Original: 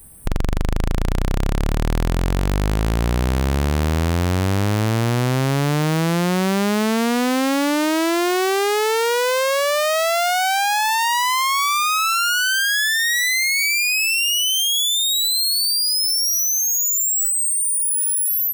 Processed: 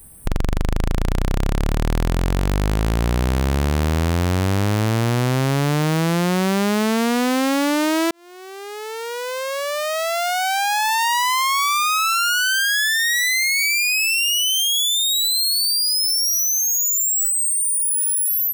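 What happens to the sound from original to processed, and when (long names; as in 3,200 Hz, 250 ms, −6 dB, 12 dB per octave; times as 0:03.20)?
0:08.11–0:11.02: fade in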